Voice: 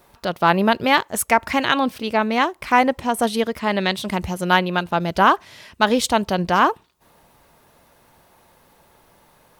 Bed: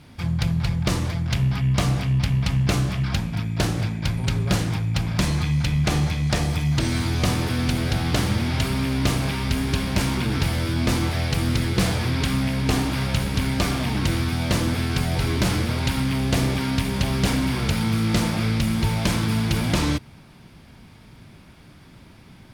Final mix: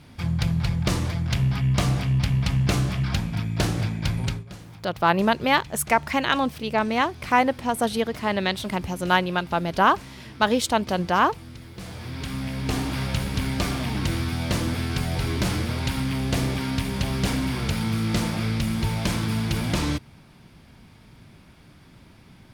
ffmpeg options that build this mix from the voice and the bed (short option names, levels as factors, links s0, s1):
-filter_complex "[0:a]adelay=4600,volume=0.668[s0];[1:a]volume=5.96,afade=t=out:st=4.23:d=0.21:silence=0.11885,afade=t=in:st=11.76:d=1.21:silence=0.149624[s1];[s0][s1]amix=inputs=2:normalize=0"